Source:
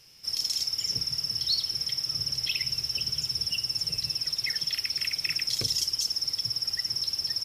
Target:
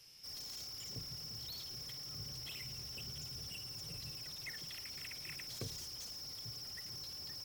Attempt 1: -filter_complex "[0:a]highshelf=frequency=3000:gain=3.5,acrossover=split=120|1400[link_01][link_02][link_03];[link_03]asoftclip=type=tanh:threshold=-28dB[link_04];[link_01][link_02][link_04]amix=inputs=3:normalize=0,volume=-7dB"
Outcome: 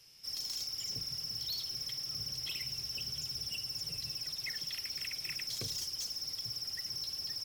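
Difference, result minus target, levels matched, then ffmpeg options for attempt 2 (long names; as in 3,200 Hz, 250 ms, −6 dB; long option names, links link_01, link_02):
soft clipping: distortion −6 dB
-filter_complex "[0:a]highshelf=frequency=3000:gain=3.5,acrossover=split=120|1400[link_01][link_02][link_03];[link_03]asoftclip=type=tanh:threshold=-39dB[link_04];[link_01][link_02][link_04]amix=inputs=3:normalize=0,volume=-7dB"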